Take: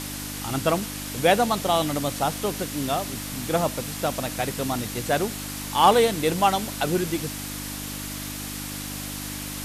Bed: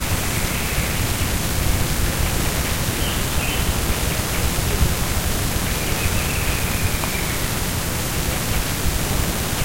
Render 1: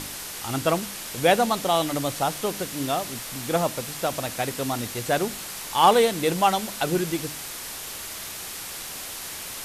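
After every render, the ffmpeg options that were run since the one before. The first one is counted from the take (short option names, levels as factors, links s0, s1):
-af "bandreject=f=50:t=h:w=4,bandreject=f=100:t=h:w=4,bandreject=f=150:t=h:w=4,bandreject=f=200:t=h:w=4,bandreject=f=250:t=h:w=4,bandreject=f=300:t=h:w=4"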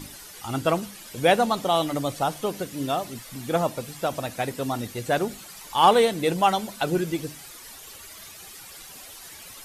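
-af "afftdn=nr=12:nf=-36"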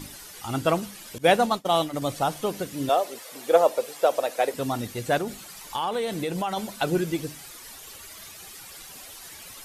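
-filter_complex "[0:a]asettb=1/sr,asplit=3[s0][s1][s2];[s0]atrim=end=1.184[s3];[s1]atrim=start=1.18:end=2.02,asetpts=PTS-STARTPTS,afade=t=in:d=0.004:c=qsin,afade=t=out:st=0.836:d=0.004:c=qsin,agate=range=0.0224:threshold=0.0631:ratio=3:release=100:detection=peak[s4];[s2]atrim=start=2.016[s5];[s3][s4]acrossfade=d=0.004:c1=hsin:c2=qsin[s6];[s6][s5]acrossfade=d=0.004:c1=qsin:c2=hsin,asettb=1/sr,asplit=3[s7][s8][s9];[s7]atrim=end=2.894[s10];[s8]atrim=start=2.89:end=4.54,asetpts=PTS-STARTPTS,afade=t=in:d=0.004:c=qsin,afade=t=out:st=1.646:d=0.004:c=qsin,highpass=f=490:t=q:w=2.7[s11];[s9]atrim=start=4.536[s12];[s10][s11]acrossfade=d=0.004:c1=hsin:c2=qsin[s13];[s13][s12]acrossfade=d=0.004:c1=qsin:c2=hsin,asplit=3[s14][s15][s16];[s14]afade=t=out:st=5.17:d=0.02[s17];[s15]acompressor=threshold=0.0631:ratio=6:attack=3.2:release=140:knee=1:detection=peak,afade=t=in:st=5.17:d=0.02,afade=t=out:st=6.56:d=0.02[s18];[s16]afade=t=in:st=6.56:d=0.02[s19];[s17][s18][s19]amix=inputs=3:normalize=0"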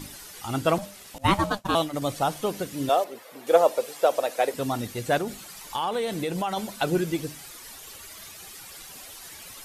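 -filter_complex "[0:a]asettb=1/sr,asplit=3[s0][s1][s2];[s0]atrim=end=0.784[s3];[s1]atrim=start=0.78:end=1.75,asetpts=PTS-STARTPTS,afade=t=in:d=0.004:c=qsin,afade=t=out:st=0.966:d=0.004:c=qsin,aeval=exprs='val(0)*sin(2*PI*400*n/s)':c=same[s4];[s2]atrim=start=1.746[s5];[s3][s4]acrossfade=d=0.004:c1=hsin:c2=qsin[s6];[s6][s5]acrossfade=d=0.004:c1=qsin:c2=hsin,asettb=1/sr,asplit=3[s7][s8][s9];[s7]atrim=end=3.044[s10];[s8]atrim=start=3.04:end=3.47,asetpts=PTS-STARTPTS,afade=t=in:d=0.004:c=qsin,afade=t=out:st=0.426:d=0.004:c=qsin,equalizer=f=7600:t=o:w=2.4:g=-11.5[s11];[s9]atrim=start=3.466[s12];[s10][s11]acrossfade=d=0.004:c1=hsin:c2=qsin[s13];[s13][s12]acrossfade=d=0.004:c1=qsin:c2=hsin"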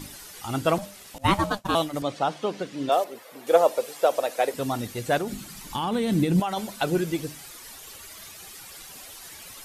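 -filter_complex "[0:a]asettb=1/sr,asplit=3[s0][s1][s2];[s0]atrim=end=2.024[s3];[s1]atrim=start=2.02:end=2.92,asetpts=PTS-STARTPTS,afade=t=in:d=0.004:c=qsin,afade=t=out:st=0.896:d=0.004:c=qsin,highpass=170,lowpass=4800[s4];[s2]atrim=start=2.916[s5];[s3][s4]acrossfade=d=0.004:c1=hsin:c2=qsin[s6];[s6][s5]acrossfade=d=0.004:c1=qsin:c2=hsin,asettb=1/sr,asplit=3[s7][s8][s9];[s7]atrim=end=5.324[s10];[s8]atrim=start=5.32:end=6.4,asetpts=PTS-STARTPTS,afade=t=in:d=0.004:c=qsin,afade=t=out:st=1.076:d=0.004:c=qsin,lowshelf=f=360:t=q:w=1.5:g=9.5[s11];[s9]atrim=start=6.396[s12];[s10][s11]acrossfade=d=0.004:c1=hsin:c2=qsin[s13];[s13][s12]acrossfade=d=0.004:c1=qsin:c2=hsin"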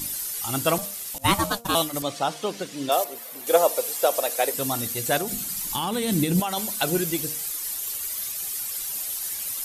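-af "aemphasis=mode=production:type=75fm,bandreject=f=234.2:t=h:w=4,bandreject=f=468.4:t=h:w=4,bandreject=f=702.6:t=h:w=4,bandreject=f=936.8:t=h:w=4,bandreject=f=1171:t=h:w=4,bandreject=f=1405.2:t=h:w=4"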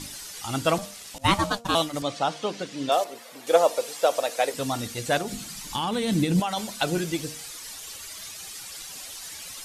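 -af "lowpass=6300,bandreject=f=380:w=12"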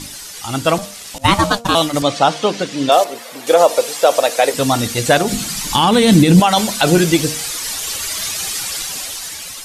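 -af "dynaudnorm=f=300:g=9:m=4.73,alimiter=level_in=2.24:limit=0.891:release=50:level=0:latency=1"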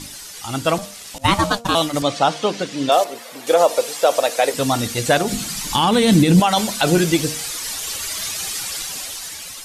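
-af "volume=0.668"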